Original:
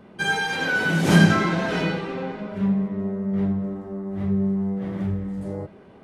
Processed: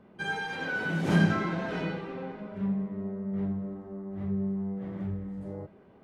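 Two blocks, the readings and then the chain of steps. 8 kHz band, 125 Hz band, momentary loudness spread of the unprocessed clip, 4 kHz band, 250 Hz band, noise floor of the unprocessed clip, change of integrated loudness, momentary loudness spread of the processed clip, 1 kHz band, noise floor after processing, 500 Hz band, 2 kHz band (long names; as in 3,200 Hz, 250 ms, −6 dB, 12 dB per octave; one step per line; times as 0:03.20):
can't be measured, −8.0 dB, 14 LU, −12.5 dB, −8.0 dB, −48 dBFS, −8.5 dB, 14 LU, −8.5 dB, −56 dBFS, −8.0 dB, −9.5 dB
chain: high-shelf EQ 4,000 Hz −10.5 dB
level −8 dB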